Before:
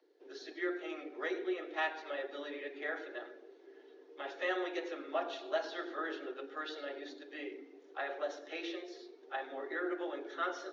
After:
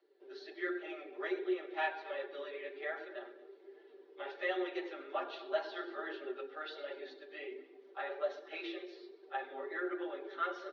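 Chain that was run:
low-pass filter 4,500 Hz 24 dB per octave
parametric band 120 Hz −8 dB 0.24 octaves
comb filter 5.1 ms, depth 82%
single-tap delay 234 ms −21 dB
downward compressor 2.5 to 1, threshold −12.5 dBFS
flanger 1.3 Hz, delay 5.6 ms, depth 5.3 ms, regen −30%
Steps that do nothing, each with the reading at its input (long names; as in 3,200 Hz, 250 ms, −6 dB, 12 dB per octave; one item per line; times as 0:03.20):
parametric band 120 Hz: nothing at its input below 240 Hz
downward compressor, threshold −12.5 dBFS: peak of its input −18.5 dBFS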